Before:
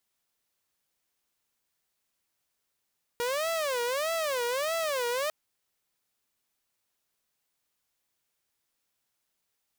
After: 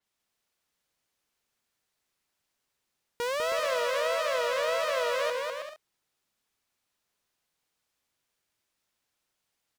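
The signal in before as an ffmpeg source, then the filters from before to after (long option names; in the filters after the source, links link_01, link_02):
-f lavfi -i "aevalsrc='0.0562*(2*mod((569.5*t-93.5/(2*PI*1.6)*sin(2*PI*1.6*t)),1)-1)':duration=2.1:sample_rate=44100"
-filter_complex "[0:a]highshelf=frequency=9800:gain=-9,asplit=2[link_01][link_02];[link_02]aecho=0:1:200|320|392|435.2|461.1:0.631|0.398|0.251|0.158|0.1[link_03];[link_01][link_03]amix=inputs=2:normalize=0,adynamicequalizer=threshold=0.00355:dfrequency=5300:dqfactor=0.7:tfrequency=5300:tqfactor=0.7:attack=5:release=100:ratio=0.375:range=3:mode=cutabove:tftype=highshelf"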